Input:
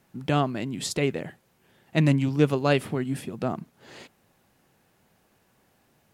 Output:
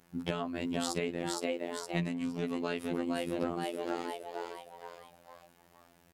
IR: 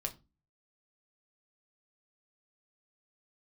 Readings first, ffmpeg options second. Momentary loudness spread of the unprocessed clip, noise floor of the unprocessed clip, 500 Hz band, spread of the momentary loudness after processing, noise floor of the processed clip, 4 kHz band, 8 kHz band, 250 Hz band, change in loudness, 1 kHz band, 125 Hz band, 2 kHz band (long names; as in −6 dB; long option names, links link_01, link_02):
10 LU, −66 dBFS, −7.0 dB, 13 LU, −64 dBFS, −5.0 dB, −4.5 dB, −7.5 dB, −9.5 dB, −6.0 dB, −15.5 dB, −7.5 dB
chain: -filter_complex "[0:a]asplit=6[link_01][link_02][link_03][link_04][link_05][link_06];[link_02]adelay=464,afreqshift=98,volume=-6dB[link_07];[link_03]adelay=928,afreqshift=196,volume=-13.1dB[link_08];[link_04]adelay=1392,afreqshift=294,volume=-20.3dB[link_09];[link_05]adelay=1856,afreqshift=392,volume=-27.4dB[link_10];[link_06]adelay=2320,afreqshift=490,volume=-34.5dB[link_11];[link_01][link_07][link_08][link_09][link_10][link_11]amix=inputs=6:normalize=0,acompressor=threshold=-30dB:ratio=5,afftfilt=real='hypot(re,im)*cos(PI*b)':imag='0':win_size=2048:overlap=0.75,volume=3dB"